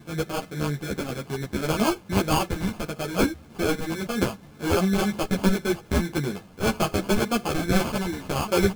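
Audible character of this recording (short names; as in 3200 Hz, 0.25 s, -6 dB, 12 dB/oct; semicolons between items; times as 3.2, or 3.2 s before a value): phasing stages 4, 1.8 Hz, lowest notch 650–1600 Hz; aliases and images of a low sample rate 1900 Hz, jitter 0%; a shimmering, thickened sound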